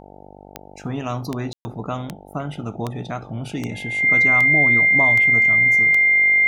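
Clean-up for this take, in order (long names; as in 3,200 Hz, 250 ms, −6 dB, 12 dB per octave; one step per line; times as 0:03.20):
click removal
hum removal 48.9 Hz, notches 18
notch filter 2,100 Hz, Q 30
ambience match 0:01.53–0:01.65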